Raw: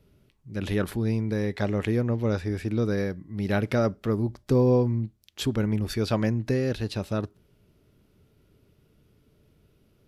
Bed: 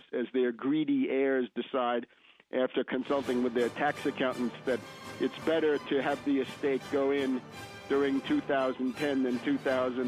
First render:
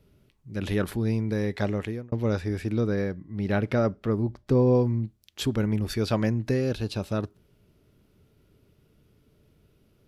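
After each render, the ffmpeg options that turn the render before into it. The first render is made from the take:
-filter_complex "[0:a]asettb=1/sr,asplit=3[a][b][c];[a]atrim=end=2.814[d];[b]atrim=start=2.81:end=4.75,asetpts=PTS-STARTPTS,afade=t=in:d=0.004:c=qsin,afade=t=out:st=1.936:d=0.004:c=qsin,highshelf=f=5.3k:g=-11[e];[c]atrim=start=4.746[f];[d][e]acrossfade=d=0.004:c1=hsin:c2=qsin[g];[g][f]acrossfade=d=0.004:c1=qsin:c2=hsin,asettb=1/sr,asplit=3[h][i][j];[h]atrim=end=6.614[k];[i]atrim=start=6.61:end=7.06,asetpts=PTS-STARTPTS,afade=t=in:d=0.004:c=qsin,afade=t=out:st=0.446:d=0.004:c=qsin,bandreject=f=1.9k:w=5.2[l];[j]atrim=start=7.056[m];[k][l]acrossfade=d=0.004:c1=hsin:c2=qsin[n];[n][m]acrossfade=d=0.004:c1=qsin:c2=hsin,asplit=2[o][p];[o]atrim=end=2.12,asetpts=PTS-STARTPTS,afade=t=out:st=1.67:d=0.45[q];[p]atrim=start=2.12,asetpts=PTS-STARTPTS,afade=t=in:d=0.004:c=hsin[r];[q][r]concat=n=2:v=0:a=1"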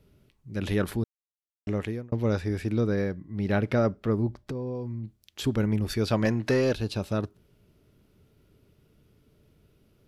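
-filter_complex "[0:a]asettb=1/sr,asplit=3[a][b][c];[a]atrim=end=4.424[d];[b]atrim=start=4.42:end=5.44,asetpts=PTS-STARTPTS,afade=t=in:d=0.004:c=qsin,afade=t=out:st=1.016:d=0.004:c=qsin,acompressor=threshold=-31dB:ratio=5:attack=3.2:release=140:knee=1:detection=peak[e];[c]atrim=start=5.436[f];[d][e]acrossfade=d=0.004:c1=hsin:c2=qsin[g];[g][f]acrossfade=d=0.004:c1=qsin:c2=hsin,asettb=1/sr,asplit=3[h][i][j];[h]atrim=end=6.254[k];[i]atrim=start=6.25:end=6.74,asetpts=PTS-STARTPTS,afade=t=in:d=0.004:c=qsin,afade=t=out:st=0.486:d=0.004:c=qsin,asplit=2[l][m];[m]highpass=f=720:p=1,volume=16dB,asoftclip=type=tanh:threshold=-13.5dB[n];[l][n]amix=inputs=2:normalize=0,lowpass=f=4.9k:p=1,volume=-6dB[o];[j]atrim=start=6.736[p];[k][o]acrossfade=d=0.004:c1=hsin:c2=qsin[q];[q][p]acrossfade=d=0.004:c1=qsin:c2=hsin,asplit=3[r][s][t];[r]atrim=end=1.04,asetpts=PTS-STARTPTS,afade=t=out:st=1.036:d=0.004:c=hsin[u];[s]atrim=start=1.04:end=1.67,asetpts=PTS-STARTPTS,volume=0[v];[t]atrim=start=1.67,asetpts=PTS-STARTPTS,afade=t=in:d=0.004:c=hsin[w];[u][v][w]concat=n=3:v=0:a=1"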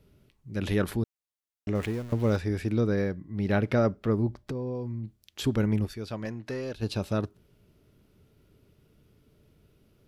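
-filter_complex "[0:a]asettb=1/sr,asplit=3[a][b][c];[a]atrim=end=1.754[d];[b]atrim=start=1.75:end=2.37,asetpts=PTS-STARTPTS,afade=t=in:d=0.004:c=qsin,afade=t=out:st=0.616:d=0.004:c=qsin,aeval=exprs='val(0)+0.5*0.0112*sgn(val(0))':c=same[e];[c]atrim=start=2.366[f];[d][e]acrossfade=d=0.004:c1=hsin:c2=qsin[g];[g][f]acrossfade=d=0.004:c1=qsin:c2=hsin,asplit=3[h][i][j];[h]atrim=end=6,asetpts=PTS-STARTPTS,afade=t=out:st=5.85:d=0.15:c=exp:silence=0.298538[k];[i]atrim=start=6:end=6.68,asetpts=PTS-STARTPTS,volume=-10.5dB[l];[j]atrim=start=6.68,asetpts=PTS-STARTPTS,afade=t=in:d=0.15:c=exp:silence=0.298538[m];[k][l][m]concat=n=3:v=0:a=1"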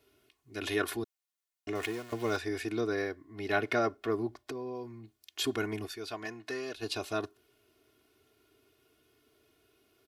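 -af "highpass=f=730:p=1,aecho=1:1:2.8:0.93"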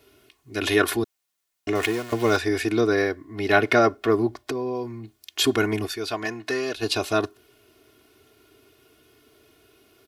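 -af "volume=11dB"

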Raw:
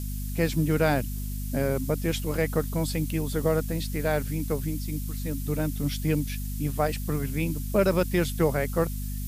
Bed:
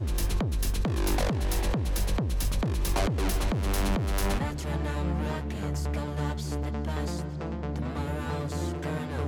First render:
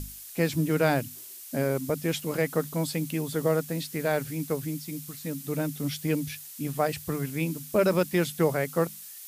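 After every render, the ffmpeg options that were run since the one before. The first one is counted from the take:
-af "bandreject=f=50:t=h:w=6,bandreject=f=100:t=h:w=6,bandreject=f=150:t=h:w=6,bandreject=f=200:t=h:w=6,bandreject=f=250:t=h:w=6"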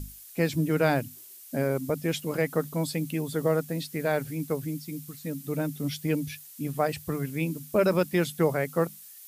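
-af "afftdn=nr=6:nf=-44"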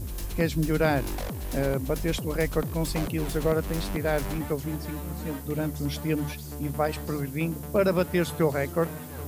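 -filter_complex "[1:a]volume=-6.5dB[a];[0:a][a]amix=inputs=2:normalize=0"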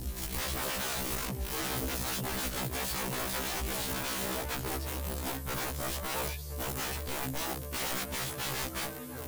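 -af "aeval=exprs='(mod(22.4*val(0)+1,2)-1)/22.4':c=same,afftfilt=real='re*1.73*eq(mod(b,3),0)':imag='im*1.73*eq(mod(b,3),0)':win_size=2048:overlap=0.75"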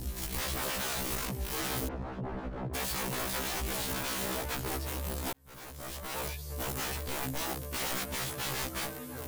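-filter_complex "[0:a]asplit=3[a][b][c];[a]afade=t=out:st=1.87:d=0.02[d];[b]lowpass=1k,afade=t=in:st=1.87:d=0.02,afade=t=out:st=2.73:d=0.02[e];[c]afade=t=in:st=2.73:d=0.02[f];[d][e][f]amix=inputs=3:normalize=0,asplit=2[g][h];[g]atrim=end=5.33,asetpts=PTS-STARTPTS,afade=t=out:st=5.326:d=0.004:c=hsin[i];[h]atrim=start=5.33,asetpts=PTS-STARTPTS,afade=t=in:d=1.17[j];[i][j]concat=n=2:v=0:a=1"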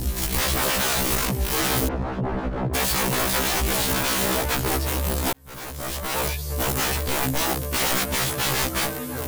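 -af "volume=11.5dB"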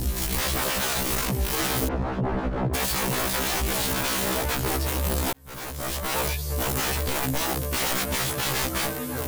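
-af "alimiter=limit=-17dB:level=0:latency=1"

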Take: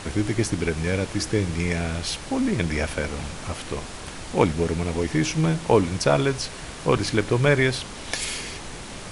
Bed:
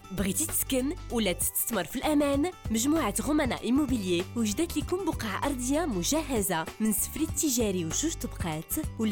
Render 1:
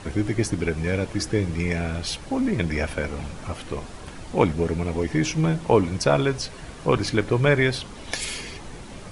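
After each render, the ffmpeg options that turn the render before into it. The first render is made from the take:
-af "afftdn=nr=8:nf=-37"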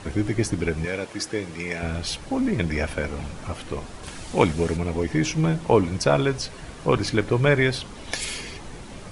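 -filter_complex "[0:a]asettb=1/sr,asplit=3[a][b][c];[a]atrim=end=0.854[d];[b]atrim=start=0.85:end=1.83,asetpts=PTS-STARTPTS,afade=t=in:d=0.004:c=qsin,afade=t=out:st=0.976:d=0.004:c=qsin,highpass=f=450:p=1[e];[c]atrim=start=1.826[f];[d][e]acrossfade=d=0.004:c1=hsin:c2=qsin[g];[g][f]acrossfade=d=0.004:c1=qsin:c2=hsin,asettb=1/sr,asplit=3[h][i][j];[h]atrim=end=4.034[k];[i]atrim=start=4.03:end=4.77,asetpts=PTS-STARTPTS,afade=t=in:d=0.004:c=qsin,afade=t=out:st=0.736:d=0.004:c=qsin,highshelf=f=2.5k:g=8.5[l];[j]atrim=start=4.766[m];[k][l]acrossfade=d=0.004:c1=hsin:c2=qsin[n];[n][m]acrossfade=d=0.004:c1=qsin:c2=hsin"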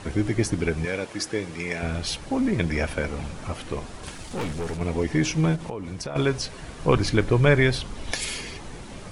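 -filter_complex "[0:a]asettb=1/sr,asplit=3[a][b][c];[a]atrim=end=4.114[d];[b]atrim=start=4.11:end=4.81,asetpts=PTS-STARTPTS,afade=t=in:d=0.004:c=qsin,afade=t=out:st=0.696:d=0.004:c=qsin,aeval=exprs='(tanh(20*val(0)+0.35)-tanh(0.35))/20':c=same[e];[c]atrim=start=4.806[f];[d][e]acrossfade=d=0.004:c1=hsin:c2=qsin[g];[g][f]acrossfade=d=0.004:c1=qsin:c2=hsin,asplit=3[h][i][j];[h]afade=t=out:st=5.55:d=0.02[k];[i]acompressor=threshold=-29dB:ratio=8:attack=3.2:release=140:knee=1:detection=peak,afade=t=in:st=5.55:d=0.02,afade=t=out:st=6.15:d=0.02[l];[j]afade=t=in:st=6.15:d=0.02[m];[k][l][m]amix=inputs=3:normalize=0,asettb=1/sr,asplit=3[n][o][p];[n]atrim=end=6.794[q];[o]atrim=start=6.79:end=8.12,asetpts=PTS-STARTPTS,afade=t=in:d=0.004:c=qsin,afade=t=out:st=1.326:d=0.004:c=qsin,lowshelf=f=72:g=10.5[r];[p]atrim=start=8.116[s];[q][r]acrossfade=d=0.004:c1=hsin:c2=qsin[t];[t][s]acrossfade=d=0.004:c1=qsin:c2=hsin"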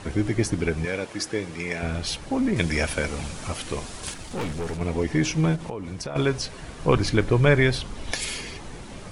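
-filter_complex "[0:a]asettb=1/sr,asplit=3[a][b][c];[a]atrim=end=2.564[d];[b]atrim=start=2.56:end=4.14,asetpts=PTS-STARTPTS,afade=t=in:d=0.004:c=qsin,afade=t=out:st=1.576:d=0.004:c=qsin,highshelf=f=3.2k:g=10.5[e];[c]atrim=start=4.136[f];[d][e]acrossfade=d=0.004:c1=hsin:c2=qsin[g];[g][f]acrossfade=d=0.004:c1=qsin:c2=hsin"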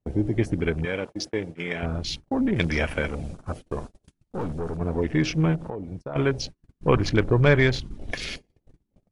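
-af "afwtdn=0.02,agate=range=-37dB:threshold=-34dB:ratio=16:detection=peak"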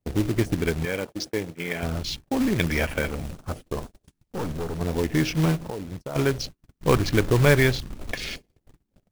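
-af "acrusher=bits=3:mode=log:mix=0:aa=0.000001"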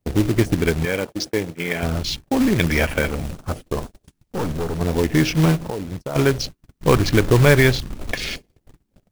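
-af "volume=5.5dB,alimiter=limit=-3dB:level=0:latency=1"

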